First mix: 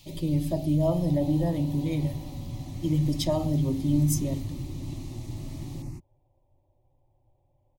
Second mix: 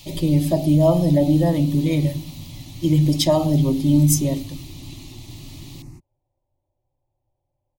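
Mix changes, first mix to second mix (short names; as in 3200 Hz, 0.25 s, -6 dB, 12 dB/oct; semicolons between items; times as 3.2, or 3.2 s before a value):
speech +10.5 dB; second sound -6.5 dB; master: add low shelf 430 Hz -3 dB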